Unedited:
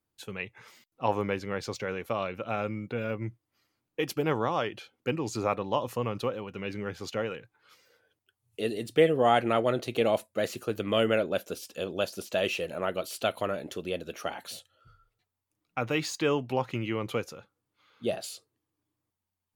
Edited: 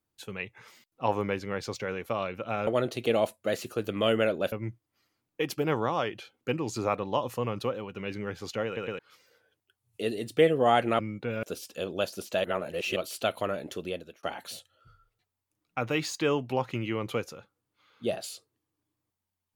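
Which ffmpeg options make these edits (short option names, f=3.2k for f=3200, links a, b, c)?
-filter_complex "[0:a]asplit=11[a][b][c][d][e][f][g][h][i][j][k];[a]atrim=end=2.672[l];[b]atrim=start=9.578:end=11.432[m];[c]atrim=start=3.108:end=7.362[n];[d]atrim=start=7.248:end=7.362[o];[e]atrim=start=7.248:end=7.362[p];[f]atrim=start=7.578:end=9.582[q];[g]atrim=start=2.668:end=3.112[r];[h]atrim=start=11.428:end=12.442[s];[i]atrim=start=12.438:end=12.962,asetpts=PTS-STARTPTS,areverse[t];[j]atrim=start=12.958:end=14.23,asetpts=PTS-STARTPTS,afade=t=out:st=0.892:d=0.38[u];[k]atrim=start=14.23,asetpts=PTS-STARTPTS,afade=t=in:d=0.004:c=hsin[v];[l][m]acrossfade=d=0.004:c1=hsin:c2=hsin[w];[w][n]acrossfade=d=0.004:c1=hsin:c2=hsin[x];[x][o]acrossfade=d=0.004:c1=hsin:c2=hsin[y];[y][p]acrossfade=d=0.004:c1=hsin:c2=hsin[z];[z][q]acrossfade=d=0.004:c1=hsin:c2=hsin[aa];[aa][r]acrossfade=d=0.004:c1=hsin:c2=hsin[ab];[ab][s]acrossfade=d=0.004:c1=hsin:c2=hsin[ac];[ac][t]acrossfade=d=0.004:c1=hsin:c2=hsin[ad];[u][v]concat=n=2:v=0:a=1[ae];[ad][ae]acrossfade=d=0.004:c1=hsin:c2=hsin"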